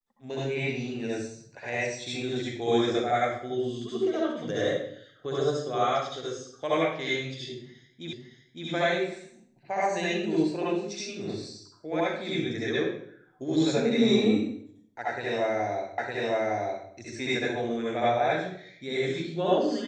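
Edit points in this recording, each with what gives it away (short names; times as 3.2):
8.13 repeat of the last 0.56 s
15.98 repeat of the last 0.91 s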